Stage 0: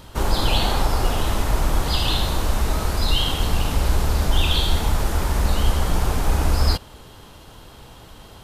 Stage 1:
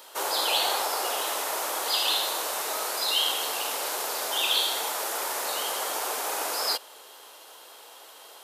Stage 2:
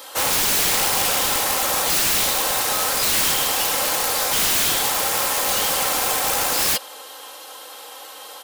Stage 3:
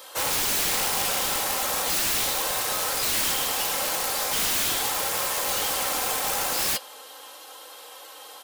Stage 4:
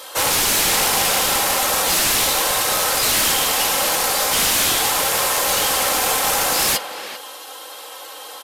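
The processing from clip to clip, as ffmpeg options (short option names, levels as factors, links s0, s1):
-af "highpass=f=450:w=0.5412,highpass=f=450:w=1.3066,highshelf=f=6700:g=9.5,volume=0.75"
-af "aecho=1:1:3.8:0.71,aeval=exprs='(mod(12.6*val(0)+1,2)-1)/12.6':c=same,volume=2.51"
-af "flanger=delay=1.8:depth=3.5:regen=-74:speed=0.38:shape=sinusoidal,volume=0.891"
-filter_complex "[0:a]aresample=32000,aresample=44100,asplit=2[s0][s1];[s1]adelay=390,highpass=300,lowpass=3400,asoftclip=type=hard:threshold=0.0562,volume=0.355[s2];[s0][s2]amix=inputs=2:normalize=0,volume=2.51"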